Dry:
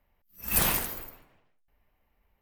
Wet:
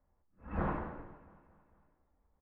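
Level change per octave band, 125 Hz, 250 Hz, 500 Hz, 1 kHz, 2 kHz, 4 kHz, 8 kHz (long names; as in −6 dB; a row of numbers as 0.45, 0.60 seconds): −2.5 dB, −1.0 dB, −3.0 dB, −4.0 dB, −12.5 dB, below −30 dB, below −40 dB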